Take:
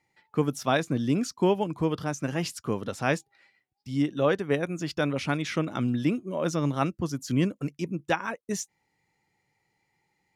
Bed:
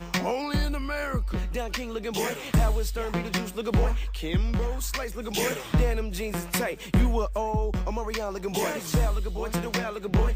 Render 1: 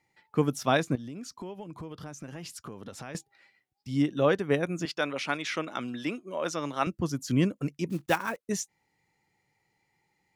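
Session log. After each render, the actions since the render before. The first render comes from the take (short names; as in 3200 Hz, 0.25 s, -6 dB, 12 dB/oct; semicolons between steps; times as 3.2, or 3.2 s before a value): 0.95–3.15 compressor, threshold -38 dBFS; 4.85–6.87 weighting filter A; 7.9–8.37 block floating point 5-bit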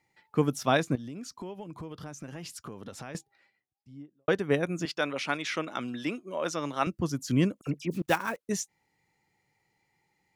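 2.93–4.28 studio fade out; 7.61–8.02 dispersion lows, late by 56 ms, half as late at 2700 Hz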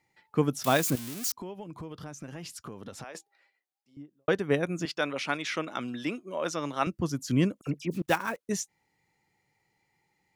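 0.64–1.32 switching spikes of -24 dBFS; 3.04–3.97 Chebyshev high-pass 500 Hz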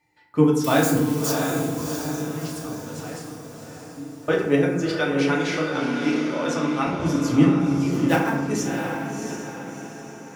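on a send: diffused feedback echo 0.681 s, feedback 47%, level -5 dB; on the sum: FDN reverb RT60 0.92 s, low-frequency decay 1.45×, high-frequency decay 0.5×, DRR -3 dB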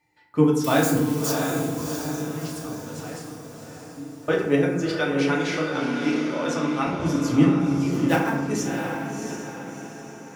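gain -1 dB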